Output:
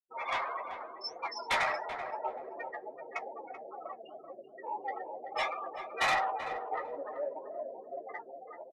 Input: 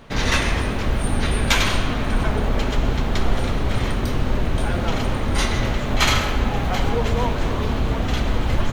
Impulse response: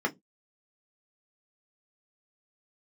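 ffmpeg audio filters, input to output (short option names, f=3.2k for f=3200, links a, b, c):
-filter_complex "[0:a]afftfilt=real='re*gte(hypot(re,im),0.1)':imag='im*gte(hypot(re,im),0.1)':win_size=1024:overlap=0.75,highpass=f=1.1k:w=0.5412,highpass=f=1.1k:w=1.3066,equalizer=f=2.5k:t=o:w=0.32:g=-10,dynaudnorm=f=200:g=7:m=4.5dB,asoftclip=type=tanh:threshold=-19.5dB,asetrate=26222,aresample=44100,atempo=1.68179,flanger=delay=4.8:depth=4.6:regen=73:speed=1.6:shape=triangular,asplit=2[a][b];[b]adelay=13,volume=-7dB[c];[a][c]amix=inputs=2:normalize=0,asplit=2[d][e];[e]adelay=384,lowpass=f=1.6k:p=1,volume=-9dB,asplit=2[f][g];[g]adelay=384,lowpass=f=1.6k:p=1,volume=0.23,asplit=2[h][i];[i]adelay=384,lowpass=f=1.6k:p=1,volume=0.23[j];[f][h][j]amix=inputs=3:normalize=0[k];[d][k]amix=inputs=2:normalize=0"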